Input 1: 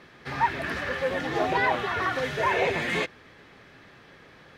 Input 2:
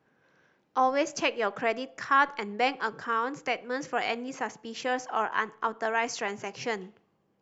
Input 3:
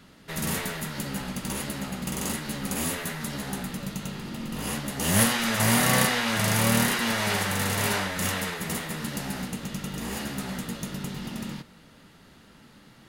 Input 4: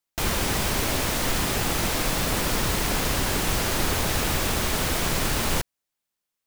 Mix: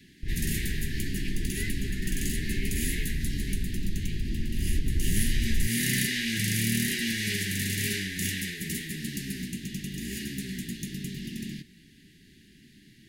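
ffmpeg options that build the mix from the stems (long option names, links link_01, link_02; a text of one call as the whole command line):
ffmpeg -i stem1.wav -i stem2.wav -i stem3.wav -i stem4.wav -filter_complex "[0:a]volume=-10.5dB[link_01];[1:a]aeval=exprs='if(lt(val(0),0),0.251*val(0),val(0))':channel_layout=same,volume=-13dB[link_02];[2:a]volume=-1.5dB[link_03];[3:a]lowpass=frequency=2400:poles=1,aemphasis=mode=reproduction:type=riaa,adelay=50,volume=-7.5dB,afade=type=in:start_time=4.54:duration=0.24:silence=0.334965[link_04];[link_01][link_02][link_03][link_04]amix=inputs=4:normalize=0,asuperstop=centerf=820:order=20:qfactor=0.65,acompressor=threshold=-23dB:ratio=2.5" out.wav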